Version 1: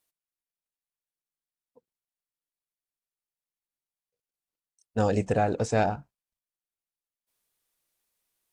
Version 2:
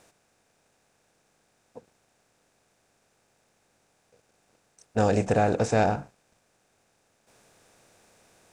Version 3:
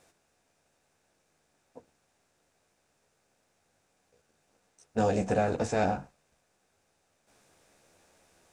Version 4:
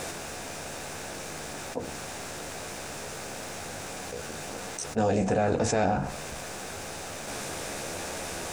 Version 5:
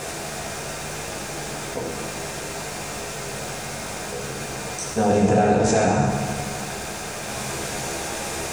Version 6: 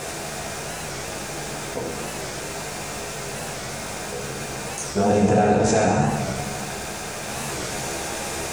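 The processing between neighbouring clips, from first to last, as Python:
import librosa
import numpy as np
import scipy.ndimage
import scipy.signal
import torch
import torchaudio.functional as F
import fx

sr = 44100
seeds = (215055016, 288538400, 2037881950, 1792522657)

y1 = fx.bin_compress(x, sr, power=0.6)
y2 = fx.chorus_voices(y1, sr, voices=4, hz=0.78, base_ms=13, depth_ms=2.1, mix_pct=40)
y2 = F.gain(torch.from_numpy(y2), -1.5).numpy()
y3 = fx.env_flatten(y2, sr, amount_pct=70)
y4 = fx.rev_fdn(y3, sr, rt60_s=2.1, lf_ratio=1.0, hf_ratio=1.0, size_ms=44.0, drr_db=-2.5)
y4 = F.gain(torch.from_numpy(y4), 2.5).numpy()
y5 = fx.record_warp(y4, sr, rpm=45.0, depth_cents=160.0)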